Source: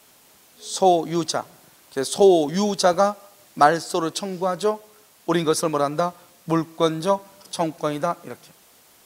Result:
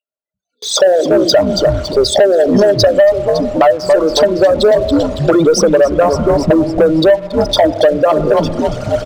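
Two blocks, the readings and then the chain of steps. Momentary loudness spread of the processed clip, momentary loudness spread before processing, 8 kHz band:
5 LU, 16 LU, +7.5 dB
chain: formant sharpening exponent 3; on a send: frequency-shifting echo 0.279 s, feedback 53%, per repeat -140 Hz, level -11 dB; on the sum: AGC gain up to 12.5 dB; in parallel at -2.5 dB: limiter -12 dBFS, peak gain reduction 11 dB; on the sum: small resonant body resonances 610/1400 Hz, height 18 dB, ringing for 75 ms; spectral noise reduction 29 dB; spring tank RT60 2 s, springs 31 ms, chirp 45 ms, DRR 19 dB; compressor 10:1, threshold -10 dBFS, peak gain reduction 18 dB; LPF 6700 Hz 24 dB/oct; gate with hold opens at -28 dBFS; sample leveller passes 2; gain -1 dB

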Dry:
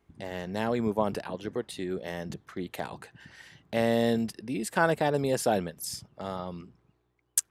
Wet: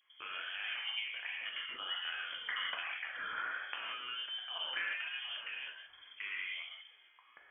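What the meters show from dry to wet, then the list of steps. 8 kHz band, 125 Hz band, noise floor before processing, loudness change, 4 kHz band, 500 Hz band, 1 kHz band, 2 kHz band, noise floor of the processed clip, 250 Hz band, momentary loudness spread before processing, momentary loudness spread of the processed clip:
under -40 dB, under -40 dB, -73 dBFS, -8.5 dB, +4.5 dB, -30.5 dB, -13.0 dB, -0.5 dB, -64 dBFS, -38.5 dB, 14 LU, 8 LU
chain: recorder AGC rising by 7.1 dB/s; resonant low shelf 390 Hz -11 dB, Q 1.5; compressor 6:1, threshold -34 dBFS, peak gain reduction 20.5 dB; fixed phaser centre 1400 Hz, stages 4; non-linear reverb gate 0.2 s flat, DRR -2.5 dB; vibrato 1.3 Hz 92 cents; inverted band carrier 3300 Hz

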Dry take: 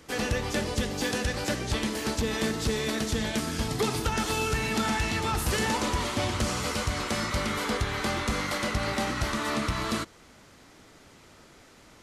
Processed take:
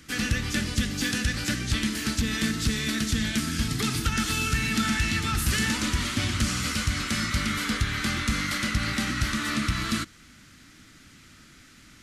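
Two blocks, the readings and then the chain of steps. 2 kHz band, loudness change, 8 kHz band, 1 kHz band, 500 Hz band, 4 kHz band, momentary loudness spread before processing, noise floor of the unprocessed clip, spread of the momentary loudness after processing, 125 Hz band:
+3.5 dB, +2.0 dB, +3.5 dB, -3.0 dB, -10.0 dB, +3.5 dB, 3 LU, -54 dBFS, 3 LU, +3.5 dB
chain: band shelf 630 Hz -14.5 dB; gain +3.5 dB

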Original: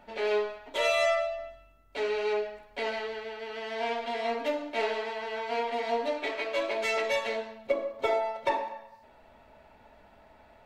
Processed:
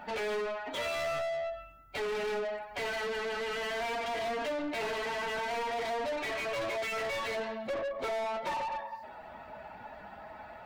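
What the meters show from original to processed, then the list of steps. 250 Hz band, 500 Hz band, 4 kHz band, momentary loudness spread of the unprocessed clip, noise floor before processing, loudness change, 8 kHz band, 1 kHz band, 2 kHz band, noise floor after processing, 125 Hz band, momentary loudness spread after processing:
-1.5 dB, -4.0 dB, -2.5 dB, 10 LU, -58 dBFS, -3.5 dB, -0.5 dB, -2.5 dB, -2.0 dB, -49 dBFS, n/a, 14 LU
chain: per-bin expansion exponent 1.5; compressor 2:1, threshold -50 dBFS, peak gain reduction 14.5 dB; overdrive pedal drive 35 dB, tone 2400 Hz, clips at -29 dBFS; gain +2 dB

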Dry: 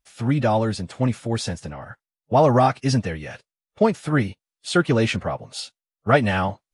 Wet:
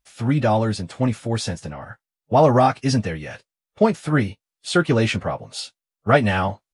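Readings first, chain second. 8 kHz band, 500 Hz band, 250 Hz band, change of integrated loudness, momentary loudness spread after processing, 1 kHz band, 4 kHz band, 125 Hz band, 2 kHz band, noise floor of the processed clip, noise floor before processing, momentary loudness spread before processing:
+1.0 dB, +1.0 dB, +1.0 dB, +1.0 dB, 16 LU, +1.0 dB, +1.0 dB, +1.0 dB, +1.0 dB, under -85 dBFS, under -85 dBFS, 16 LU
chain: doubler 19 ms -13 dB; gain +1 dB

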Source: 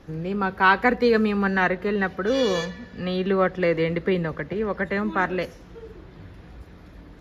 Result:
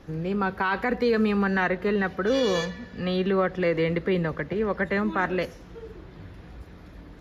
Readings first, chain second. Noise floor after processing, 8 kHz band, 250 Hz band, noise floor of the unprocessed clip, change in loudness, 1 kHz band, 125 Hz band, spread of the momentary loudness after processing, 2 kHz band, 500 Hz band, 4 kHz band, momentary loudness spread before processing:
-47 dBFS, n/a, -1.0 dB, -47 dBFS, -2.5 dB, -4.5 dB, -0.5 dB, 20 LU, -4.0 dB, -2.0 dB, -2.0 dB, 10 LU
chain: limiter -15 dBFS, peak gain reduction 10.5 dB

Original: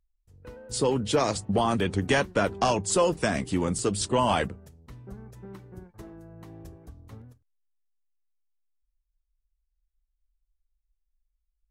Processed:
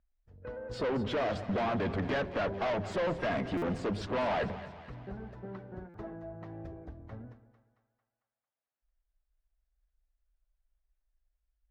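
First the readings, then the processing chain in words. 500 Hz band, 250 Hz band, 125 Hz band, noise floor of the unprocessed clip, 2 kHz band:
-6.0 dB, -6.5 dB, -6.5 dB, -79 dBFS, -5.5 dB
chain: bin magnitudes rounded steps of 15 dB; fifteen-band EQ 250 Hz +3 dB, 630 Hz +10 dB, 1600 Hz +7 dB; tube stage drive 28 dB, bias 0.3; air absorption 250 m; on a send: split-band echo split 730 Hz, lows 0.118 s, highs 0.224 s, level -13 dB; on the sum: stuck buffer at 3.57/5.89, samples 256, times 8

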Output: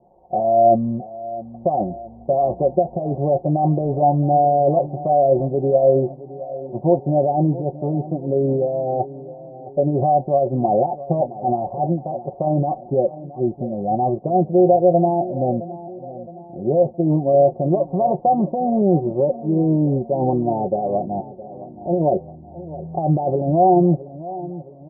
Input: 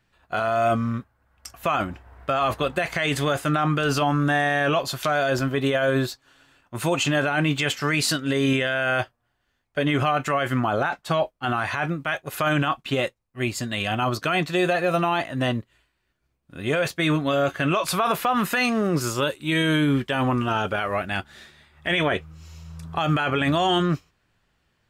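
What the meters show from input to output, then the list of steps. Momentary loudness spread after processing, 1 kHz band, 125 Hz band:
15 LU, +5.5 dB, +4.5 dB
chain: switching spikes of -25 dBFS; steep low-pass 790 Hz 72 dB/oct; tilt +2 dB/oct; comb 5.5 ms, depth 54%; feedback echo 0.666 s, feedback 49%, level -16 dB; gain +8 dB

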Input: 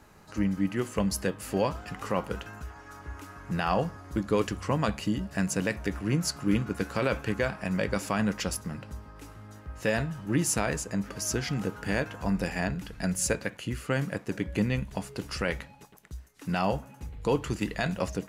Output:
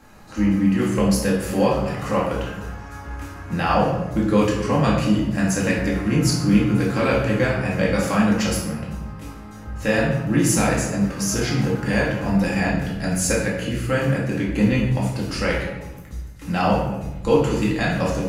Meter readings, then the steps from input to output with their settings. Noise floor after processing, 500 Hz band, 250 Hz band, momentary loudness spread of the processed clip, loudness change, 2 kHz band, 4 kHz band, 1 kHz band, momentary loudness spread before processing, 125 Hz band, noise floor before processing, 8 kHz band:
-38 dBFS, +9.0 dB, +10.5 dB, 14 LU, +9.0 dB, +8.0 dB, +7.5 dB, +8.5 dB, 15 LU, +10.0 dB, -52 dBFS, +6.5 dB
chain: shoebox room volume 360 m³, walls mixed, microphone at 2.2 m; gain +2 dB

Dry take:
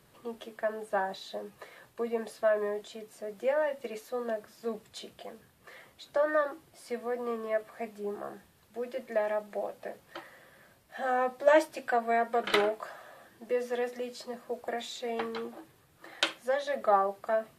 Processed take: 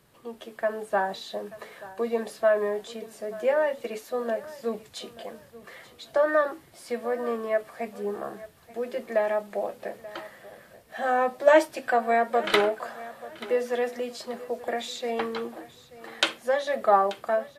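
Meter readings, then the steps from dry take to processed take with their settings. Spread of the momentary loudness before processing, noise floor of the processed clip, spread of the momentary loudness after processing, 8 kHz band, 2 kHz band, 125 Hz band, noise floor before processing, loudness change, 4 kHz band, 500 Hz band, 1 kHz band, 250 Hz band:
19 LU, -54 dBFS, 19 LU, +5.0 dB, +5.0 dB, n/a, -63 dBFS, +5.0 dB, +5.0 dB, +5.0 dB, +5.0 dB, +5.0 dB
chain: AGC gain up to 5 dB; feedback echo 0.884 s, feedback 27%, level -18 dB

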